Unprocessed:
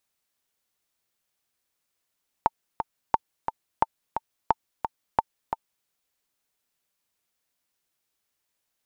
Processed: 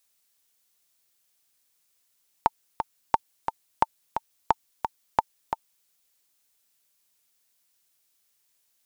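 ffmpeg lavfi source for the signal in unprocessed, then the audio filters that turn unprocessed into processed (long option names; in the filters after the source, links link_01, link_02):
-f lavfi -i "aevalsrc='pow(10,(-5.5-7.5*gte(mod(t,2*60/176),60/176))/20)*sin(2*PI*896*mod(t,60/176))*exp(-6.91*mod(t,60/176)/0.03)':duration=3.4:sample_rate=44100"
-af "highshelf=frequency=3000:gain=10.5"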